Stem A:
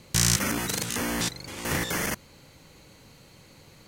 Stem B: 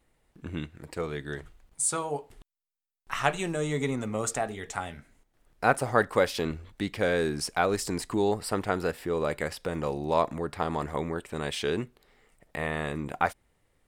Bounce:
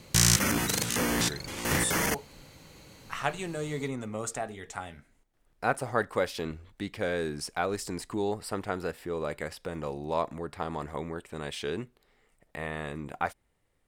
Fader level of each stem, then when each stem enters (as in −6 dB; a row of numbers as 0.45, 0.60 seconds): +0.5, −4.5 decibels; 0.00, 0.00 seconds